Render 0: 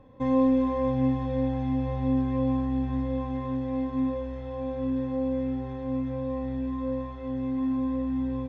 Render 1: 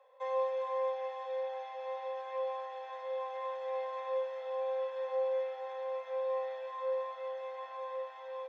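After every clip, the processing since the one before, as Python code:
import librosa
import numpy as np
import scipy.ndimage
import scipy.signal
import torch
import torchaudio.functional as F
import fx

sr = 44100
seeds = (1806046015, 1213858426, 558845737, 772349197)

y = fx.rider(x, sr, range_db=10, speed_s=2.0)
y = scipy.signal.sosfilt(scipy.signal.butter(12, 490.0, 'highpass', fs=sr, output='sos'), y)
y = F.gain(torch.from_numpy(y), -1.5).numpy()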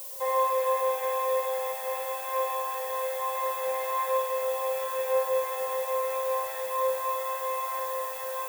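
y = fx.rev_spring(x, sr, rt60_s=2.1, pass_ms=(50,), chirp_ms=30, drr_db=-1.5)
y = fx.dmg_noise_colour(y, sr, seeds[0], colour='violet', level_db=-48.0)
y = F.gain(torch.from_numpy(y), 8.0).numpy()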